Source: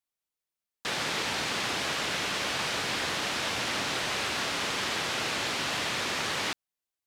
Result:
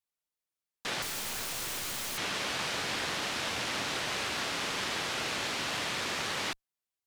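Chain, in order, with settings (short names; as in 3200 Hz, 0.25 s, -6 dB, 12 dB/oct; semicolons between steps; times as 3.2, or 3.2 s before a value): tube stage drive 21 dB, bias 0.6; 1.02–2.18 wrapped overs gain 31.5 dB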